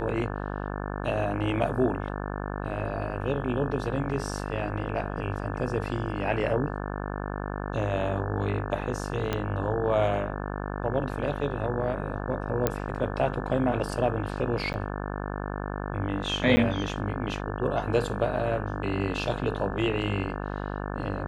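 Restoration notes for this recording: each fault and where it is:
buzz 50 Hz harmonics 35 -33 dBFS
9.33 pop -13 dBFS
12.67 pop -9 dBFS
14.73–14.74 gap 9.9 ms
16.56–16.57 gap 10 ms

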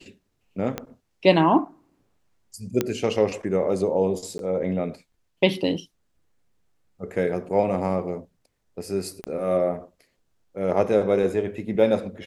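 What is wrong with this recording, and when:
0.78 pop -13 dBFS
2.81 pop -8 dBFS
4.38–4.39 gap 12 ms
9.24 pop -18 dBFS

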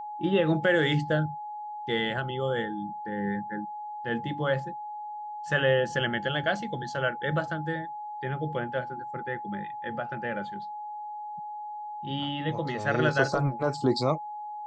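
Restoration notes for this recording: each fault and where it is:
tone 840 Hz -35 dBFS

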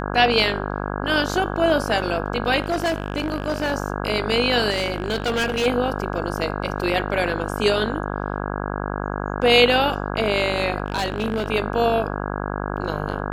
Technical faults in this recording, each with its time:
buzz 50 Hz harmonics 33 -27 dBFS
2.62–3.73 clipped -18 dBFS
4.7–5.67 clipped -18 dBFS
10.86–11.48 clipped -18 dBFS

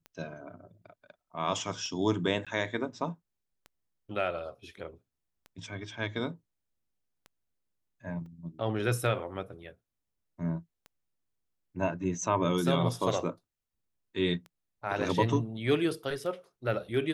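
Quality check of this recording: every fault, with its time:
tick 33 1/3 rpm -31 dBFS
2.45–2.47 gap 16 ms
8.26 gap 2.2 ms

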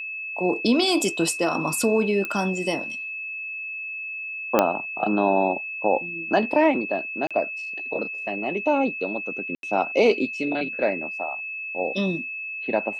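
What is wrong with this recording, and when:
tone 2600 Hz -30 dBFS
2.25 pop -15 dBFS
4.59 pop -4 dBFS
7.27–7.31 gap 36 ms
9.55–9.63 gap 82 ms

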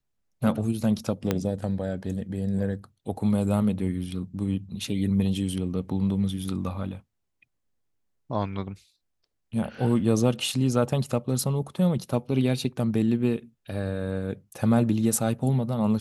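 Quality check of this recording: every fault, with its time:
1.31 pop -10 dBFS

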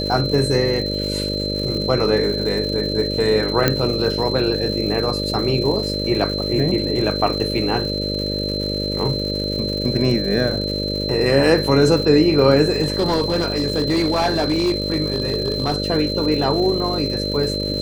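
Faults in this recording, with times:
buzz 50 Hz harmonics 12 -25 dBFS
crackle 250/s -28 dBFS
tone 4100 Hz -25 dBFS
3.68 pop -1 dBFS
12.82–15.78 clipped -13.5 dBFS

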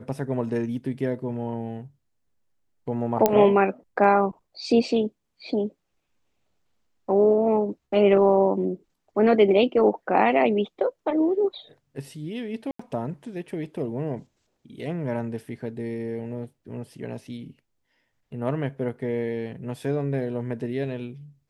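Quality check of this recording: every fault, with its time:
3.26 pop -5 dBFS
12.71–12.79 gap 84 ms

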